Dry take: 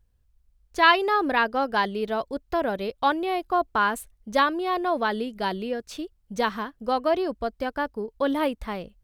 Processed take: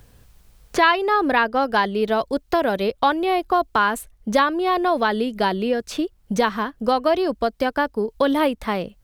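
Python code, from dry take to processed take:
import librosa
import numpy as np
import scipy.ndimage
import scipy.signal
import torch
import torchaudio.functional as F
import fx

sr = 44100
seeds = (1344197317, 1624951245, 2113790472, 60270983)

y = fx.band_squash(x, sr, depth_pct=70)
y = F.gain(torch.from_numpy(y), 4.5).numpy()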